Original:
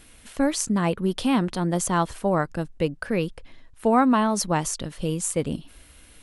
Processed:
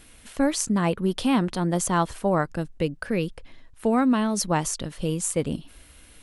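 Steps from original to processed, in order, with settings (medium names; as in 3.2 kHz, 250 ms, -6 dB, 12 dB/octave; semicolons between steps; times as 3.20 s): 2.50–4.50 s: dynamic bell 950 Hz, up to -8 dB, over -35 dBFS, Q 1.1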